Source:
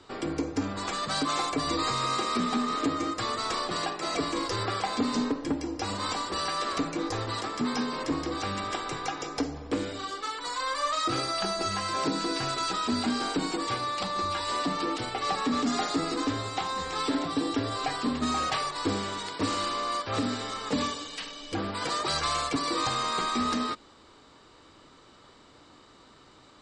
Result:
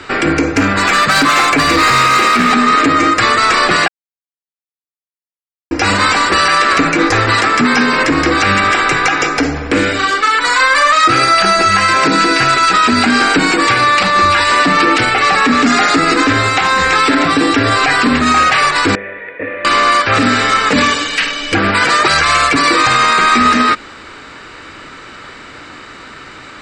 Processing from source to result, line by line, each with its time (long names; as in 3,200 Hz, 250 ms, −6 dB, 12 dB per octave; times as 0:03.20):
0:00.51–0:02.52: hard clipping −26.5 dBFS
0:03.88–0:05.71: silence
0:18.95–0:19.65: formant resonators in series e
whole clip: flat-topped bell 1,900 Hz +10 dB 1.2 octaves; boost into a limiter +19.5 dB; level −1 dB